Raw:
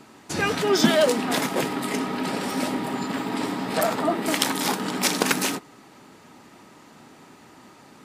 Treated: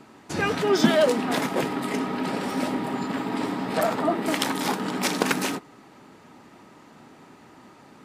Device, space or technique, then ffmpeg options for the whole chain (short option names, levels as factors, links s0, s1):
behind a face mask: -af "highshelf=f=3400:g=-7"